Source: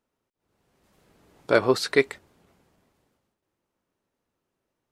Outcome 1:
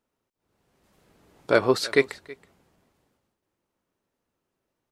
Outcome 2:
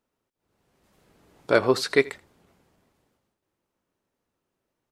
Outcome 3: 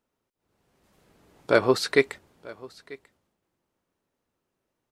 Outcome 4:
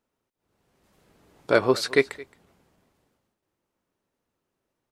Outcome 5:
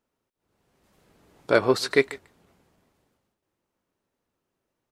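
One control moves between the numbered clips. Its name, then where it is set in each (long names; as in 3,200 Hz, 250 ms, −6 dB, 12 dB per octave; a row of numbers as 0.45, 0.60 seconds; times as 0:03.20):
single-tap delay, delay time: 324, 82, 941, 220, 147 milliseconds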